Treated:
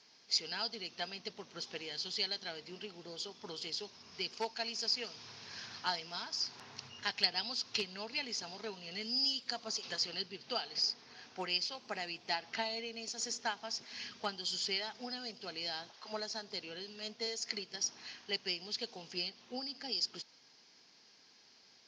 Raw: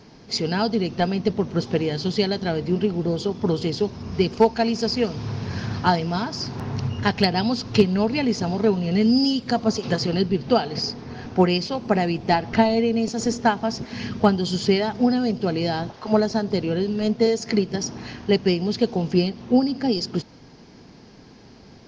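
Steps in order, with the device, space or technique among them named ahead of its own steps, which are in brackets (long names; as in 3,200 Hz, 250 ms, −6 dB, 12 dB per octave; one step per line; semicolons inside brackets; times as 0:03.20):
piezo pickup straight into a mixer (low-pass filter 5,500 Hz 12 dB per octave; first difference)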